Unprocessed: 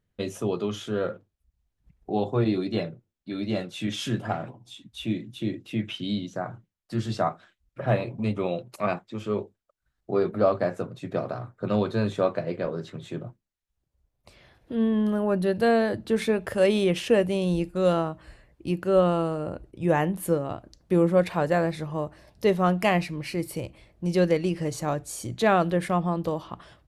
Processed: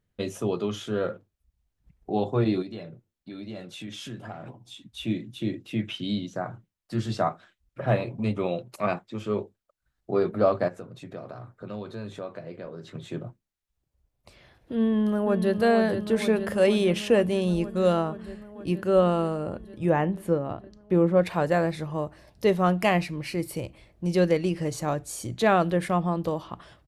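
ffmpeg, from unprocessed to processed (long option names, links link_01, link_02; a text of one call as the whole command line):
ffmpeg -i in.wav -filter_complex "[0:a]asettb=1/sr,asplit=3[link_01][link_02][link_03];[link_01]atrim=end=2.624[link_04];[link_02]atrim=start=2.62:end=4.46,asetpts=PTS-STARTPTS,afade=type=in:duration=0.004:curve=qsin,afade=type=out:start_time=1.836:duration=0.004:curve=qsin,acompressor=threshold=-39dB:ratio=2.5:attack=3.2:release=140:knee=1:detection=peak[link_05];[link_03]atrim=start=4.456[link_06];[link_04][link_05]acrossfade=duration=0.004:curve1=hsin:curve2=qsin[link_07];[link_07][link_06]acrossfade=duration=0.004:curve1=qsin:curve2=hsin,asettb=1/sr,asplit=3[link_08][link_09][link_10];[link_08]atrim=end=10.684[link_11];[link_09]atrim=start=10.68:end=12.95,asetpts=PTS-STARTPTS,afade=type=in:duration=0.004:curve=qsin,afade=type=out:start_time=2.266:duration=0.004:curve=qsin,acompressor=threshold=-42dB:ratio=2:attack=3.2:release=140:knee=1:detection=peak[link_12];[link_10]atrim=start=12.946[link_13];[link_11][link_12]acrossfade=duration=0.004:curve1=hsin:curve2=qsin[link_14];[link_14][link_13]acrossfade=duration=0.004:curve1=qsin:curve2=hsin,asplit=2[link_15][link_16];[link_16]afade=type=in:start_time=14.79:duration=0.01,afade=type=out:start_time=15.6:duration=0.01,aecho=0:1:470|940|1410|1880|2350|2820|3290|3760|4230|4700|5170|5640:0.398107|0.318486|0.254789|0.203831|0.163065|0.130452|0.104361|0.0834891|0.0667913|0.053433|0.0427464|0.0341971[link_17];[link_15][link_17]amix=inputs=2:normalize=0,asettb=1/sr,asplit=3[link_18][link_19][link_20];[link_18]atrim=end=19.894[link_21];[link_19]atrim=start=19.89:end=21.25,asetpts=PTS-STARTPTS,afade=type=in:duration=0.004:curve=qsin,afade=type=out:start_time=1.356:duration=0.004:curve=qsin,aemphasis=mode=reproduction:type=75kf[link_22];[link_20]atrim=start=21.246[link_23];[link_21][link_22]acrossfade=duration=0.004:curve1=hsin:curve2=qsin[link_24];[link_24][link_23]acrossfade=duration=0.004:curve1=qsin:curve2=hsin" out.wav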